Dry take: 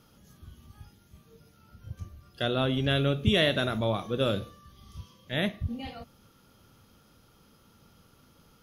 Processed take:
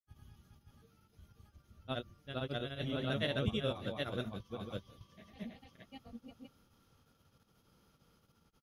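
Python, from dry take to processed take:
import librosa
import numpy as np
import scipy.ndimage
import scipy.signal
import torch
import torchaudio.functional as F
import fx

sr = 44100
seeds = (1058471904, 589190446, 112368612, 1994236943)

y = fx.chopper(x, sr, hz=1.0, depth_pct=60, duty_pct=85)
y = fx.granulator(y, sr, seeds[0], grain_ms=100.0, per_s=31.0, spray_ms=717.0, spread_st=0)
y = F.gain(torch.from_numpy(y), -5.5).numpy()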